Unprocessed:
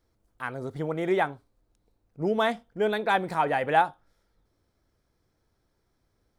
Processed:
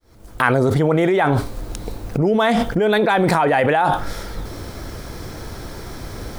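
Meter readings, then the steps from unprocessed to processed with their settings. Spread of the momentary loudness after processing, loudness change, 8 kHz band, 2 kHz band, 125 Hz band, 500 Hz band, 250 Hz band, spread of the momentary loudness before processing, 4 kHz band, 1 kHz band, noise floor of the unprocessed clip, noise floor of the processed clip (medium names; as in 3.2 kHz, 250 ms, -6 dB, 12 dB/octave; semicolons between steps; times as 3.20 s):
17 LU, +9.5 dB, no reading, +9.5 dB, +17.5 dB, +10.5 dB, +13.5 dB, 11 LU, +10.0 dB, +7.5 dB, -74 dBFS, -39 dBFS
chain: fade-in on the opening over 1.03 s; level flattener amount 100%; trim +1 dB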